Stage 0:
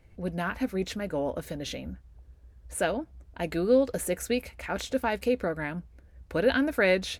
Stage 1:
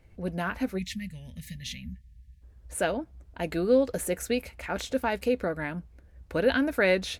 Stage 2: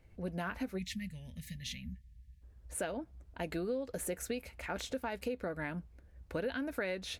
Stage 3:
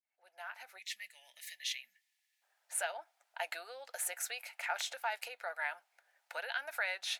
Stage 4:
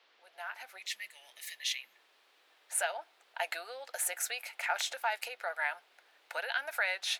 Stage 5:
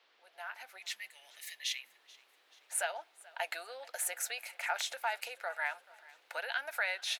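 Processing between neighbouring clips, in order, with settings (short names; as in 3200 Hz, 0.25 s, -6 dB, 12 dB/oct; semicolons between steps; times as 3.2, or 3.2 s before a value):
spectral gain 0.78–2.42, 250–1700 Hz -29 dB
compressor 6:1, threshold -29 dBFS, peak gain reduction 11.5 dB; gain -4.5 dB
opening faded in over 1.36 s; Chebyshev high-pass 730 Hz, order 4; notch 1100 Hz, Q 6.3; gain +5.5 dB
band noise 350–4000 Hz -72 dBFS; gain +4 dB
feedback echo 0.433 s, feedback 52%, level -22.5 dB; gain -2 dB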